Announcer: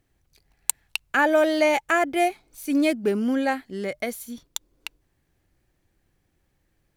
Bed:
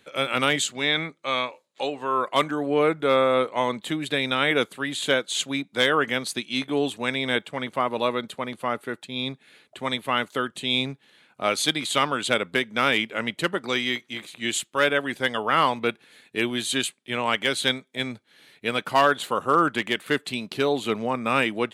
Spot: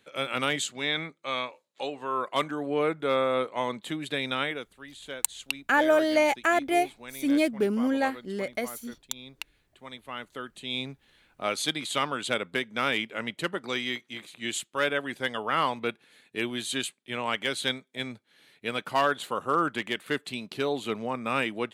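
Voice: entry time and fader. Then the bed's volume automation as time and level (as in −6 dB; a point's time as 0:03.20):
4.55 s, −2.5 dB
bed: 0:04.41 −5.5 dB
0:04.63 −17 dB
0:09.80 −17 dB
0:11.10 −5.5 dB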